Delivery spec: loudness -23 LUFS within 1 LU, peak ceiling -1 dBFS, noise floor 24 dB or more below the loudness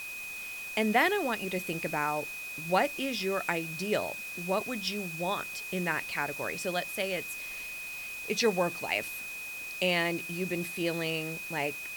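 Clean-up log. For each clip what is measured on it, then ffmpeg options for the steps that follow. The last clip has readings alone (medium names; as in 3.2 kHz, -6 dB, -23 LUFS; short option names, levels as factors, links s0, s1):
steady tone 2.5 kHz; tone level -38 dBFS; noise floor -40 dBFS; noise floor target -56 dBFS; loudness -31.5 LUFS; peak level -13.5 dBFS; loudness target -23.0 LUFS
-> -af "bandreject=f=2500:w=30"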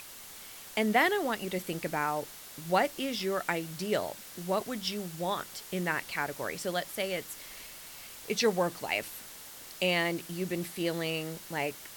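steady tone not found; noise floor -48 dBFS; noise floor target -56 dBFS
-> -af "afftdn=nr=8:nf=-48"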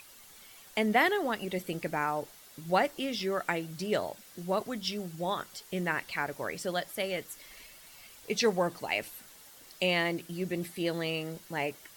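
noise floor -54 dBFS; noise floor target -56 dBFS
-> -af "afftdn=nr=6:nf=-54"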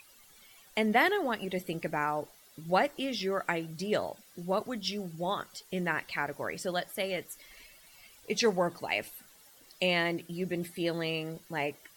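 noise floor -58 dBFS; loudness -32.0 LUFS; peak level -13.5 dBFS; loudness target -23.0 LUFS
-> -af "volume=2.82"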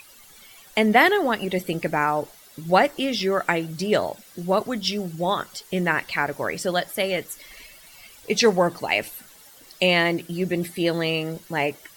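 loudness -23.0 LUFS; peak level -4.5 dBFS; noise floor -49 dBFS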